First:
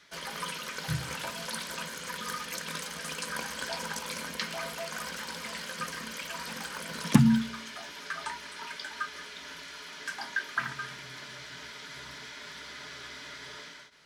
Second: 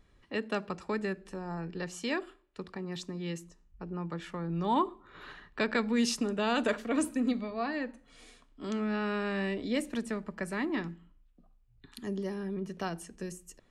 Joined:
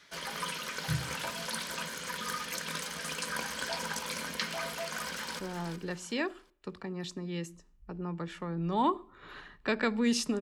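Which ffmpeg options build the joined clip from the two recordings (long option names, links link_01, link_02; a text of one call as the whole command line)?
ffmpeg -i cue0.wav -i cue1.wav -filter_complex "[0:a]apad=whole_dur=10.41,atrim=end=10.41,atrim=end=5.392[link_01];[1:a]atrim=start=1.308:end=6.33[link_02];[link_01][link_02]acrossfade=duration=0.004:curve1=hsin:curve2=hsin,asplit=2[link_03][link_04];[link_04]afade=type=in:start_time=4.98:duration=0.01,afade=type=out:start_time=5.39:duration=0.01,aecho=0:1:370|740|1110:0.354813|0.106444|0.0319332[link_05];[link_03][link_05]amix=inputs=2:normalize=0" out.wav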